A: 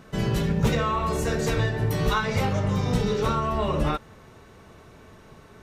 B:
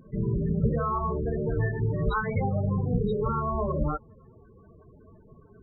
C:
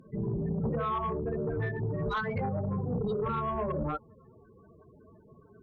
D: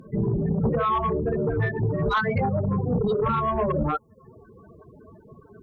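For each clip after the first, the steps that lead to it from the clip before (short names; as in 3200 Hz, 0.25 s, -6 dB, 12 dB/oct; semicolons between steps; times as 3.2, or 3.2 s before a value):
pre-echo 82 ms -24 dB; loudest bins only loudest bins 16; gain -2 dB
HPF 130 Hz 6 dB/oct; sine folder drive 4 dB, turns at -16.5 dBFS; gain -9 dB
reverb removal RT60 0.6 s; gain +9 dB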